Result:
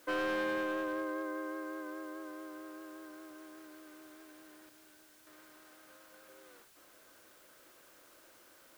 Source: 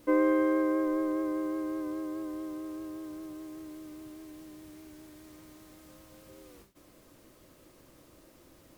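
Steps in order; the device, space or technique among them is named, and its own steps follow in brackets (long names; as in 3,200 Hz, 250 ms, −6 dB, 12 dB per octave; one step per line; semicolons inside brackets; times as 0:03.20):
0:04.69–0:05.27: downward expander −44 dBFS
drive-through speaker (band-pass filter 480–3,500 Hz; parametric band 1,500 Hz +11 dB 0.31 octaves; hard clipping −28.5 dBFS, distortion −10 dB; white noise bed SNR 21 dB)
level −2 dB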